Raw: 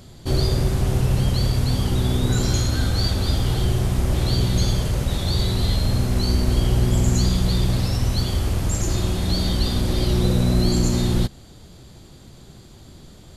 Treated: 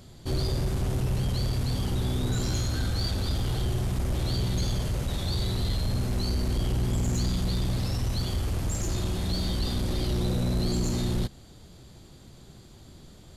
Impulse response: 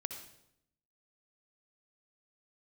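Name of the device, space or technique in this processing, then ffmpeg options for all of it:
saturation between pre-emphasis and de-emphasis: -af "highshelf=frequency=6400:gain=8,asoftclip=type=tanh:threshold=-15.5dB,highshelf=frequency=6400:gain=-8,volume=-5dB"

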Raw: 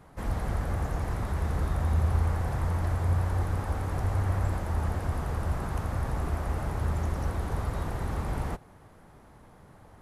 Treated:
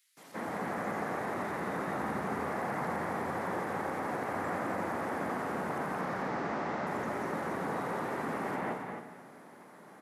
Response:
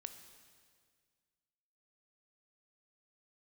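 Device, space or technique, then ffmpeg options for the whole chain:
stadium PA: -filter_complex "[0:a]asettb=1/sr,asplit=3[link_01][link_02][link_03];[link_01]atrim=end=6.014[link_04];[link_02]atrim=start=6.01:end=6.87,asetpts=PTS-STARTPTS,afade=type=in:duration=0.004:curve=qsin,afade=type=out:start_time=0.856:duration=0.004:curve=qsin,lowpass=frequency=5900:width=0.5412,lowpass=frequency=5900:width=1.3066[link_05];[link_03]atrim=start=6.866[link_06];[link_04][link_05]acrossfade=duration=0.004:curve1=hsin:curve2=qsin[link_07];[link_07][link_06]acrossfade=duration=0.004:curve1=qsin:curve2=hsin,acrossover=split=3100[link_08][link_09];[link_08]adelay=170[link_10];[link_10][link_09]amix=inputs=2:normalize=0,acrossover=split=2900[link_11][link_12];[link_12]acompressor=threshold=-58dB:ratio=4:attack=1:release=60[link_13];[link_11][link_13]amix=inputs=2:normalize=0,highpass=frequency=200:width=0.5412,highpass=frequency=200:width=1.3066,equalizer=frequency=2000:width_type=o:width=0.6:gain=5,aecho=1:1:186.6|218.7|271.1:0.282|0.251|0.398[link_14];[1:a]atrim=start_sample=2205[link_15];[link_14][link_15]afir=irnorm=-1:irlink=0,volume=6dB"

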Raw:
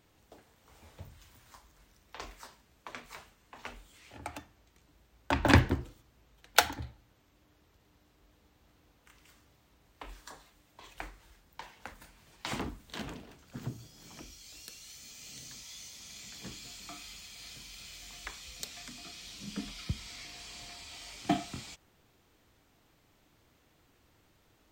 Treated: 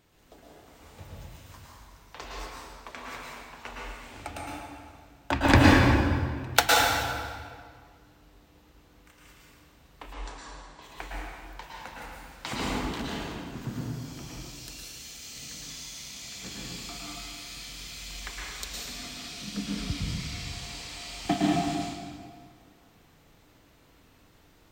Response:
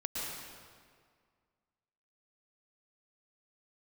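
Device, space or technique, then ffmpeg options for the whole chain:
stairwell: -filter_complex "[1:a]atrim=start_sample=2205[link_01];[0:a][link_01]afir=irnorm=-1:irlink=0,asettb=1/sr,asplit=3[link_02][link_03][link_04];[link_02]atrim=end=10.134[link_05];[link_03]atrim=start=10.13:end=10.82,asetpts=PTS-STARTPTS,afade=type=in:duration=0.004:curve=qsin,afade=type=out:start_time=0.686:duration=0.004:curve=qsin,lowpass=frequency=8200:width=0.5412,lowpass=frequency=8200:width=1.3066[link_06];[link_04]atrim=start=10.816[link_07];[link_05][link_06]acrossfade=duration=0.004:curve1=hsin:curve2=qsin[link_08];[link_08][link_07]acrossfade=duration=0.004:curve1=qsin:curve2=hsin,volume=4dB"

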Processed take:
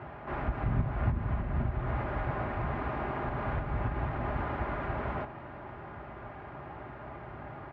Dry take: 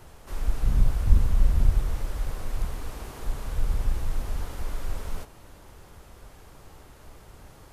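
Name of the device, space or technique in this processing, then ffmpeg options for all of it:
bass amplifier: -af "acompressor=threshold=-22dB:ratio=6,highpass=frequency=71:width=0.5412,highpass=frequency=71:width=1.3066,equalizer=frequency=81:width_type=q:width=4:gain=-7,equalizer=frequency=120:width_type=q:width=4:gain=5,equalizer=frequency=190:width_type=q:width=4:gain=-9,equalizer=frequency=320:width_type=q:width=4:gain=4,equalizer=frequency=450:width_type=q:width=4:gain=-9,equalizer=frequency=710:width_type=q:width=4:gain=4,lowpass=frequency=2100:width=0.5412,lowpass=frequency=2100:width=1.3066,aecho=1:1:4.9:0.41,volume=9dB"

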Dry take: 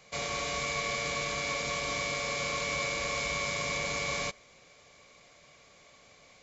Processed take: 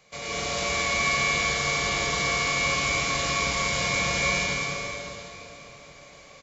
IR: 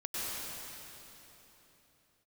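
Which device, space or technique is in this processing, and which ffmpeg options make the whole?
cave: -filter_complex "[0:a]aecho=1:1:212:0.376[link_01];[1:a]atrim=start_sample=2205[link_02];[link_01][link_02]afir=irnorm=-1:irlink=0,volume=2.5dB"

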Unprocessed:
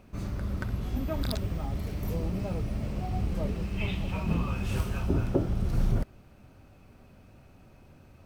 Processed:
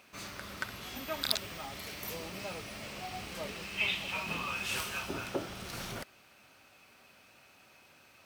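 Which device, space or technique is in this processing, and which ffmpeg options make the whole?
filter by subtraction: -filter_complex "[0:a]asplit=2[link_01][link_02];[link_02]lowpass=2900,volume=-1[link_03];[link_01][link_03]amix=inputs=2:normalize=0,volume=6.5dB"

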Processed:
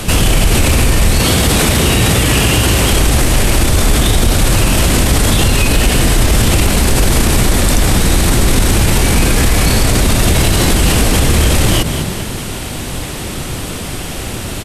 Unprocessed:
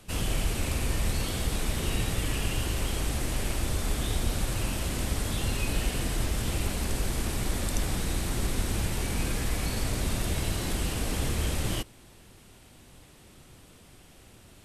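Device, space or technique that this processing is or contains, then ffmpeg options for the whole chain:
loud club master: -filter_complex "[0:a]asettb=1/sr,asplit=3[link_01][link_02][link_03];[link_01]atrim=end=1.194[link_04];[link_02]atrim=start=1.19:end=2.92,asetpts=PTS-STARTPTS,afade=type=in:duration=0.004:curve=qsin,afade=type=out:start_time=1.726:duration=0.004:curve=qsin,highpass=62[link_05];[link_03]atrim=start=2.916[link_06];[link_04][link_05]acrossfade=duration=0.004:curve1=hsin:curve2=qsin[link_07];[link_07][link_06]acrossfade=duration=0.004:curve1=qsin:curve2=hsin,asplit=5[link_08][link_09][link_10][link_11][link_12];[link_09]adelay=204,afreqshift=38,volume=-21dB[link_13];[link_10]adelay=408,afreqshift=76,volume=-27dB[link_14];[link_11]adelay=612,afreqshift=114,volume=-33dB[link_15];[link_12]adelay=816,afreqshift=152,volume=-39.1dB[link_16];[link_08][link_13][link_14][link_15][link_16]amix=inputs=5:normalize=0,acompressor=threshold=-30dB:ratio=3,asoftclip=type=hard:threshold=-23.5dB,alimiter=level_in=32.5dB:limit=-1dB:release=50:level=0:latency=1,volume=-1.5dB"

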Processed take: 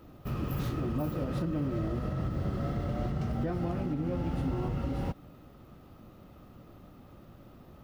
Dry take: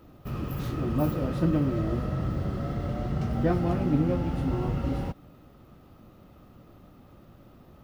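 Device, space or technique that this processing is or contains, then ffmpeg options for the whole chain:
stacked limiters: -af "alimiter=limit=-17.5dB:level=0:latency=1:release=291,alimiter=limit=-23.5dB:level=0:latency=1:release=137"

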